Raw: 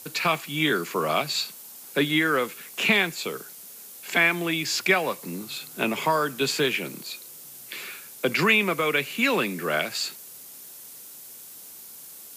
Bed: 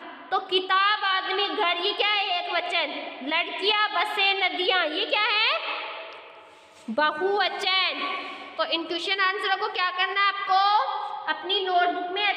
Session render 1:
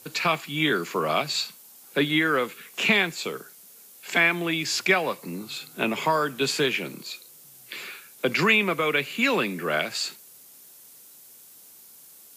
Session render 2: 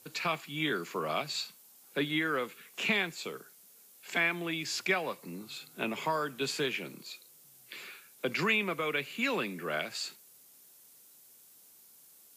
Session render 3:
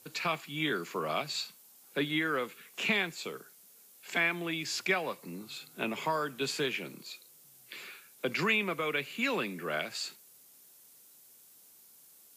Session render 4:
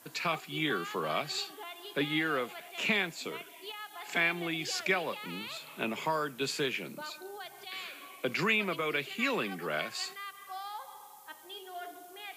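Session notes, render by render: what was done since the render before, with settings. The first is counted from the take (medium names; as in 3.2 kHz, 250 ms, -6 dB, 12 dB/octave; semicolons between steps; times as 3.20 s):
noise print and reduce 6 dB
trim -8.5 dB
no audible change
add bed -21 dB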